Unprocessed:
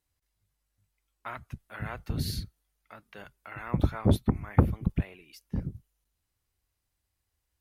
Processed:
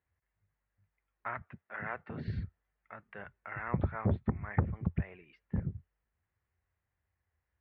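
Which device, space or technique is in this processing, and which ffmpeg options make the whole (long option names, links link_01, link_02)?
bass amplifier: -filter_complex "[0:a]acompressor=threshold=-26dB:ratio=4,highpass=65,equalizer=frequency=85:width_type=q:width=4:gain=4,equalizer=frequency=290:width_type=q:width=4:gain=-7,equalizer=frequency=1800:width_type=q:width=4:gain=5,lowpass=frequency=2200:width=0.5412,lowpass=frequency=2200:width=1.3066,asettb=1/sr,asplit=3[link_01][link_02][link_03];[link_01]atrim=end=1.424[link_04];[link_02]atrim=start=1.42:end=2.28,asetpts=PTS-STARTPTS,afade=type=in:duration=0.004:curve=qsin,afade=type=out:start_time=0.856:duration=0.004:curve=qsin,highpass=230[link_05];[link_03]atrim=start=2.276[link_06];[link_04][link_05]acrossfade=duration=0.004:curve1=hsin:curve2=qsin[link_07];[link_07][link_06]acrossfade=duration=0.004:curve1=qsin:curve2=hsin"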